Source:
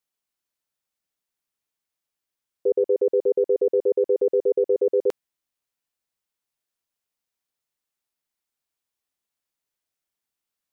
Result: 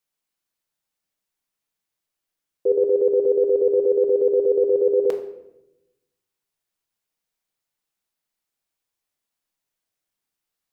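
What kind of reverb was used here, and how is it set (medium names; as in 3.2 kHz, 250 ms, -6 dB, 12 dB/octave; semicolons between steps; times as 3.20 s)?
simulated room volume 300 m³, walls mixed, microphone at 0.62 m; trim +1 dB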